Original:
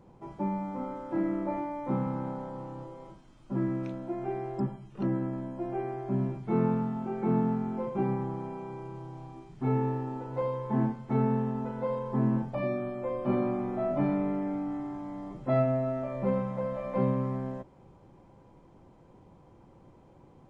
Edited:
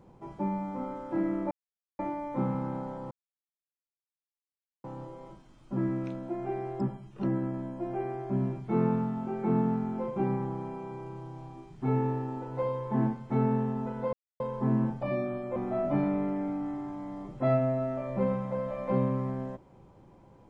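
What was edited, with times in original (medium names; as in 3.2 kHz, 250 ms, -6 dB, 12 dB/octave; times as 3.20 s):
1.51 s: insert silence 0.48 s
2.63 s: insert silence 1.73 s
11.92 s: insert silence 0.27 s
13.08–13.62 s: delete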